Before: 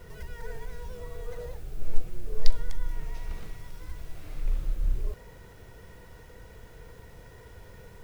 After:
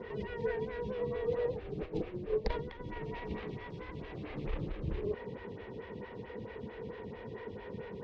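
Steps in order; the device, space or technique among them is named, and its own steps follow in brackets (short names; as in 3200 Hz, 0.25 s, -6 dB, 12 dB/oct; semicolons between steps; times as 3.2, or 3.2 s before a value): vibe pedal into a guitar amplifier (photocell phaser 4.5 Hz; tube stage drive 12 dB, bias 0.75; speaker cabinet 92–3500 Hz, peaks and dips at 220 Hz +9 dB, 410 Hz +5 dB, 660 Hz -6 dB, 1400 Hz -8 dB); gain +14 dB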